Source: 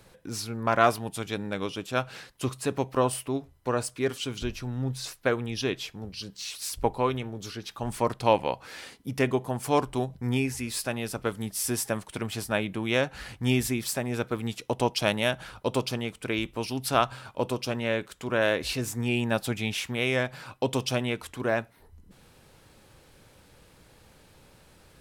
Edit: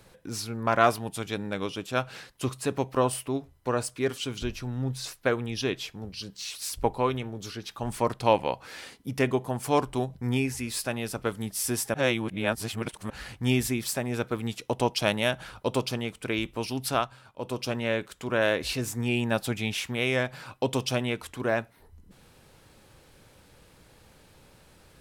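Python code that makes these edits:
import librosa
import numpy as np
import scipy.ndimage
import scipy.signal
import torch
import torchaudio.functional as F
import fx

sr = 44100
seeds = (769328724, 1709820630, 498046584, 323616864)

y = fx.edit(x, sr, fx.reverse_span(start_s=11.94, length_s=1.16),
    fx.fade_down_up(start_s=16.87, length_s=0.75, db=-9.5, fade_s=0.24), tone=tone)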